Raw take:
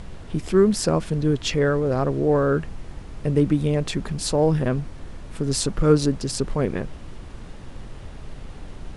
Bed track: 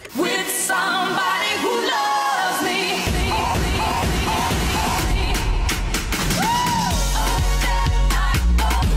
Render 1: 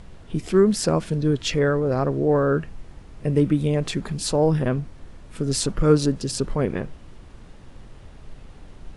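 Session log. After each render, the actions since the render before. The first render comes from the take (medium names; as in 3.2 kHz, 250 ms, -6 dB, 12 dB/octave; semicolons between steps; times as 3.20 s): noise print and reduce 6 dB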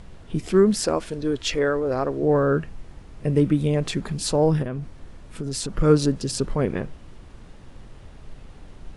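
0.83–2.23 s: peaking EQ 160 Hz -13 dB; 4.62–5.77 s: compression 4:1, threshold -25 dBFS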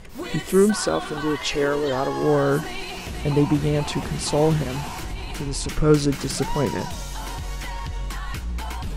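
add bed track -12 dB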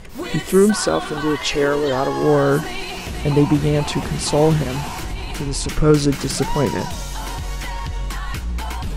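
trim +4 dB; peak limiter -3 dBFS, peak gain reduction 2.5 dB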